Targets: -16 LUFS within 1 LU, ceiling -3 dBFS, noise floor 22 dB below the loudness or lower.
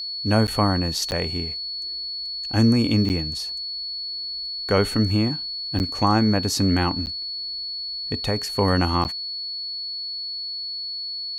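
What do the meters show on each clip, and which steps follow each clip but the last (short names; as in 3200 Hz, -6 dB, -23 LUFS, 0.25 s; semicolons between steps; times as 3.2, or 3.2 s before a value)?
dropouts 6; longest dropout 9.4 ms; steady tone 4400 Hz; tone level -28 dBFS; loudness -23.5 LUFS; peak -6.5 dBFS; loudness target -16.0 LUFS
-> interpolate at 0.47/1.11/3.09/5.79/7.06/9.04, 9.4 ms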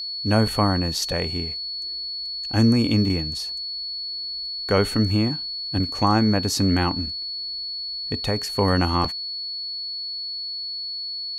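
dropouts 0; steady tone 4400 Hz; tone level -28 dBFS
-> notch 4400 Hz, Q 30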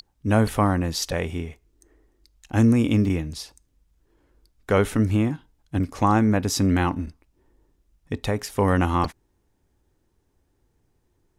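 steady tone none; loudness -23.0 LUFS; peak -6.5 dBFS; loudness target -16.0 LUFS
-> gain +7 dB; limiter -3 dBFS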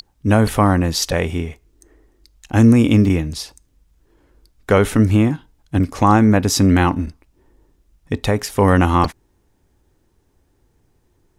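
loudness -16.5 LUFS; peak -3.0 dBFS; noise floor -62 dBFS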